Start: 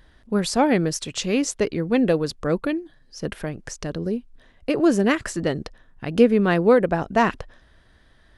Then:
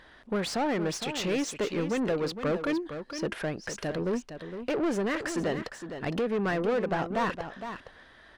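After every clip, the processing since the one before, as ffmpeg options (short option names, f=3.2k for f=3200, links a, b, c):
-filter_complex "[0:a]alimiter=limit=-14.5dB:level=0:latency=1:release=281,asplit=2[a][b];[b]highpass=f=720:p=1,volume=21dB,asoftclip=type=tanh:threshold=-14.5dB[c];[a][c]amix=inputs=2:normalize=0,lowpass=f=2.3k:p=1,volume=-6dB,aecho=1:1:461:0.335,volume=-6.5dB"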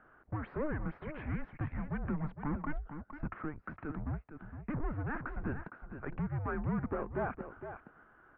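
-af "highpass=f=270:t=q:w=0.5412,highpass=f=270:t=q:w=1.307,lowpass=f=2.2k:t=q:w=0.5176,lowpass=f=2.2k:t=q:w=0.7071,lowpass=f=2.2k:t=q:w=1.932,afreqshift=-300,volume=-6dB"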